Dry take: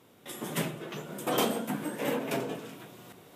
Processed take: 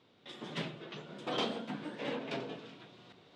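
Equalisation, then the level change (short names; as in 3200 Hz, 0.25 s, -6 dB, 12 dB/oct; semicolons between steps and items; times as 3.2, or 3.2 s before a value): ladder low-pass 4900 Hz, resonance 45%; +1.5 dB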